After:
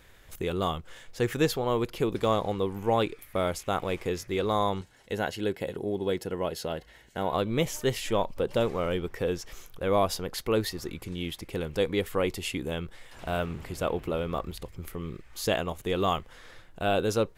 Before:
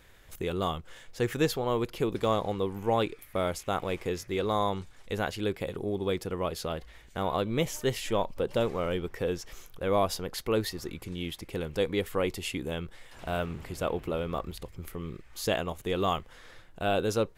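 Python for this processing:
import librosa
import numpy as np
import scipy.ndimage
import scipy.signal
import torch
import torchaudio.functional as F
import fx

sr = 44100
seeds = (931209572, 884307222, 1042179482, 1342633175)

y = fx.notch_comb(x, sr, f0_hz=1200.0, at=(4.81, 7.33))
y = y * 10.0 ** (1.5 / 20.0)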